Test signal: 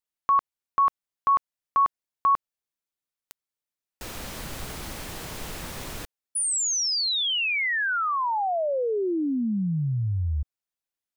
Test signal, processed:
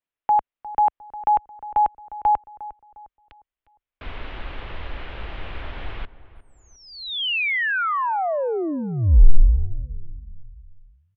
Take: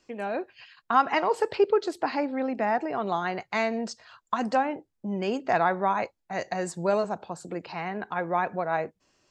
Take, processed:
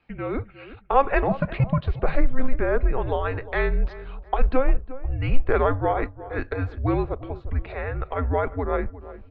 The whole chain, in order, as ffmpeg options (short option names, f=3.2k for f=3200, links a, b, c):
-filter_complex "[0:a]asplit=2[a][b];[b]adelay=355,lowpass=f=1.5k:p=1,volume=-15dB,asplit=2[c][d];[d]adelay=355,lowpass=f=1.5k:p=1,volume=0.44,asplit=2[e][f];[f]adelay=355,lowpass=f=1.5k:p=1,volume=0.44,asplit=2[g][h];[h]adelay=355,lowpass=f=1.5k:p=1,volume=0.44[i];[a][c][e][g][i]amix=inputs=5:normalize=0,highpass=f=260:t=q:w=0.5412,highpass=f=260:t=q:w=1.307,lowpass=f=3.5k:t=q:w=0.5176,lowpass=f=3.5k:t=q:w=0.7071,lowpass=f=3.5k:t=q:w=1.932,afreqshift=-270,asubboost=boost=10.5:cutoff=54,volume=3dB"